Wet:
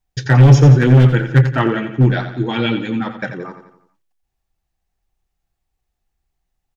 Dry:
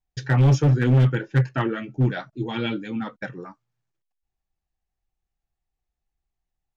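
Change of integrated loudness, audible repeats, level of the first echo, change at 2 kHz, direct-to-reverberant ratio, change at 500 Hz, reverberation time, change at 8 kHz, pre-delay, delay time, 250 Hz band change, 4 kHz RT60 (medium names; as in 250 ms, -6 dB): +9.0 dB, 5, -10.0 dB, +8.5 dB, no reverb, +8.5 dB, no reverb, no reading, no reverb, 87 ms, +8.5 dB, no reverb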